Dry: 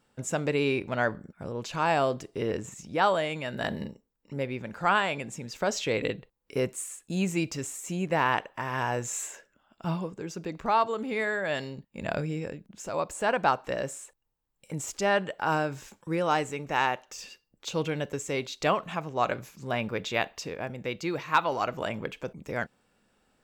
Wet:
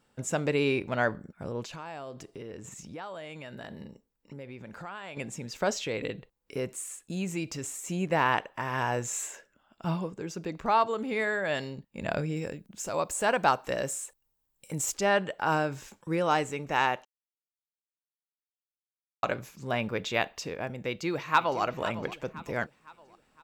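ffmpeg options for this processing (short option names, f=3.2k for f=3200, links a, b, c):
-filter_complex "[0:a]asettb=1/sr,asplit=3[a][b][c];[a]atrim=end=1.644[d];[b]atrim=start=1.64:end=5.17,asetpts=PTS-STARTPTS,afade=t=in:d=0.004:c=qsin,afade=t=out:st=3.526:d=0.004:c=qsin,acompressor=threshold=-40dB:ratio=4:attack=3.2:release=140:knee=1:detection=peak[e];[c]atrim=start=5.166[f];[d][e]acrossfade=d=0.004:c1=hsin:c2=qsin[g];[g][f]acrossfade=d=0.004:c1=qsin:c2=hsin,asettb=1/sr,asplit=3[h][i][j];[h]atrim=end=5.734[k];[i]atrim=start=5.73:end=7.64,asetpts=PTS-STARTPTS,afade=t=in:d=0.004:c=qsin,afade=t=out:st=1.906:d=0.004:c=qsin,acompressor=threshold=-36dB:ratio=1.5:attack=3.2:release=140:knee=1:detection=peak[l];[j]atrim=start=7.636[m];[k][l]acrossfade=d=0.004:c1=hsin:c2=qsin[n];[n][m]acrossfade=d=0.004:c1=qsin:c2=hsin,asettb=1/sr,asplit=3[o][p][q];[o]atrim=end=12.364[r];[p]atrim=start=12.36:end=14.94,asetpts=PTS-STARTPTS,afade=t=in:d=0.004:c=qsin,afade=t=out:st=2.576:d=0.004:c=qsin,highshelf=f=6.2k:g=10[s];[q]atrim=start=14.936[t];[r][s]acrossfade=d=0.004:c1=hsin:c2=qsin[u];[u][t]acrossfade=d=0.004:c1=qsin:c2=hsin,asplit=2[v][w];[w]afade=t=in:st=20.88:d=0.01,afade=t=out:st=21.62:d=0.01,aecho=0:1:510|1020|1530|2040:0.199526|0.0897868|0.0404041|0.0181818[x];[v][x]amix=inputs=2:normalize=0,asplit=3[y][z][aa];[y]atrim=end=17.05,asetpts=PTS-STARTPTS,afade=t=out:st=17.046:d=0.004:c=hsin[ab];[z]atrim=start=17.05:end=19.23,asetpts=PTS-STARTPTS,volume=0[ac];[aa]atrim=start=19.23,asetpts=PTS-STARTPTS,afade=t=in:d=0.004:c=hsin[ad];[ab][ac][ad]concat=n=3:v=0:a=1"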